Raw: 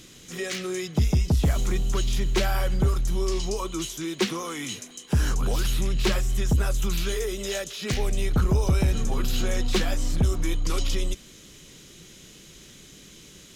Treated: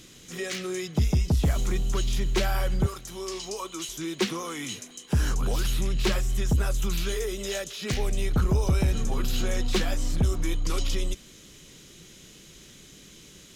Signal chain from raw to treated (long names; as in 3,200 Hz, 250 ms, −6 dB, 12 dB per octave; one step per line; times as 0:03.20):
0:02.86–0:03.89: high-pass filter 510 Hz 6 dB per octave
level −1.5 dB